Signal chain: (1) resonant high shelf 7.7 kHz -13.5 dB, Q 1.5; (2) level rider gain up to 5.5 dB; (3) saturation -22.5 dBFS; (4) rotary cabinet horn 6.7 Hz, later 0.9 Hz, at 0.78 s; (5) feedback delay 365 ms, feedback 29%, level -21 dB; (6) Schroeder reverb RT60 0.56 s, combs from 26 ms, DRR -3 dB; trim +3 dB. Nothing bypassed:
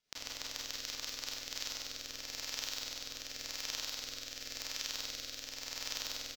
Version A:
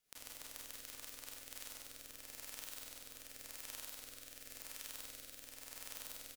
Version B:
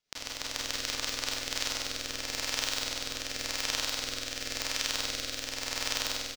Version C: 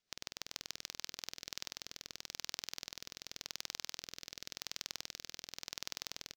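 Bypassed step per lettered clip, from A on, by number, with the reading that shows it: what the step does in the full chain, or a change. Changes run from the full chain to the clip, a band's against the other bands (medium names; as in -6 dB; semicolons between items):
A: 1, 4 kHz band -6.5 dB; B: 3, distortion -8 dB; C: 6, 125 Hz band +2.0 dB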